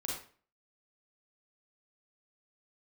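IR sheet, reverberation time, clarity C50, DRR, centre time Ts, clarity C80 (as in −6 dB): 0.45 s, 1.0 dB, −3.5 dB, 46 ms, 7.0 dB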